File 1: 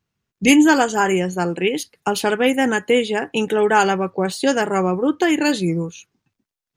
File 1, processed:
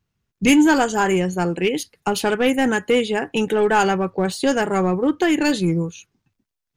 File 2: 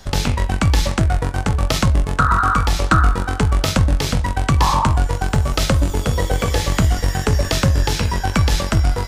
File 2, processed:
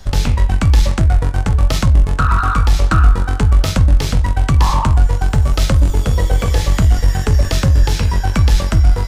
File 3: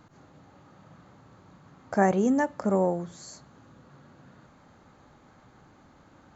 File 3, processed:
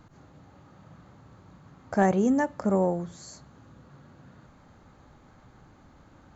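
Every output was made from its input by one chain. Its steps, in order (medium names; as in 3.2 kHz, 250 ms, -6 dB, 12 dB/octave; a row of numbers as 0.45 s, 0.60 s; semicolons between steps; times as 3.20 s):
in parallel at -4 dB: hard clipper -14.5 dBFS; on the sum: bass shelf 91 Hz +11 dB; trim -5 dB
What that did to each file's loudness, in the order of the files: -1.0 LU, +3.5 LU, 0.0 LU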